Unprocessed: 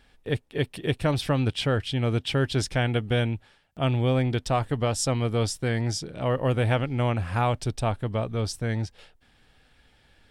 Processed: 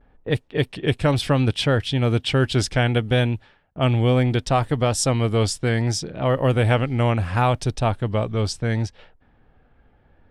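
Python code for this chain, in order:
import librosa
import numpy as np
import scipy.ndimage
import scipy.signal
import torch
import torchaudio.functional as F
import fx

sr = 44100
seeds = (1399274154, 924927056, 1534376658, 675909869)

y = fx.vibrato(x, sr, rate_hz=0.69, depth_cents=55.0)
y = fx.env_lowpass(y, sr, base_hz=1000.0, full_db=-22.5)
y = y * librosa.db_to_amplitude(5.0)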